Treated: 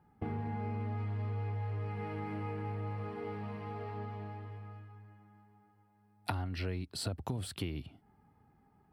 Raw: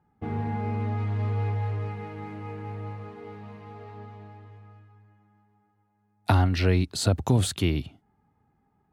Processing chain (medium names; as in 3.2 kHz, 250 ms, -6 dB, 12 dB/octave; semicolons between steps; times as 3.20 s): compression 6:1, threshold -37 dBFS, peak gain reduction 19.5 dB; peaking EQ 6.6 kHz -14.5 dB 0.21 oct; band-stop 3.7 kHz, Q 17; trim +2 dB